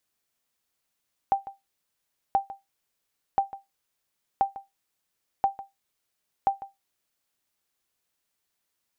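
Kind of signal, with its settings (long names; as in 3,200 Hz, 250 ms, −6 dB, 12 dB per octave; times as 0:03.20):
ping with an echo 787 Hz, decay 0.18 s, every 1.03 s, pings 6, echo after 0.15 s, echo −16.5 dB −13.5 dBFS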